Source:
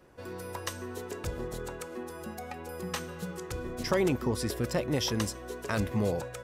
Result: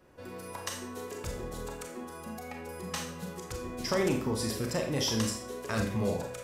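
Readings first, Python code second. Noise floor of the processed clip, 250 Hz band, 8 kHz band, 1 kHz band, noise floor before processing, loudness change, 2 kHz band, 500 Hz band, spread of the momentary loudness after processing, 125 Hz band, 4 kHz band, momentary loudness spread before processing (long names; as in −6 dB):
−45 dBFS, −0.5 dB, +2.5 dB, −0.5 dB, −44 dBFS, −0.5 dB, −1.0 dB, −1.5 dB, 13 LU, −1.5 dB, +1.5 dB, 12 LU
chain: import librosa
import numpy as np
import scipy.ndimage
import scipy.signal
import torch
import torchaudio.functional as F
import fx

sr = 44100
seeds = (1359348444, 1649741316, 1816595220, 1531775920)

y = fx.dynamic_eq(x, sr, hz=6700.0, q=0.8, threshold_db=-47.0, ratio=4.0, max_db=4)
y = np.clip(10.0 ** (16.0 / 20.0) * y, -1.0, 1.0) / 10.0 ** (16.0 / 20.0)
y = fx.rev_schroeder(y, sr, rt60_s=0.46, comb_ms=28, drr_db=2.0)
y = F.gain(torch.from_numpy(y), -3.0).numpy()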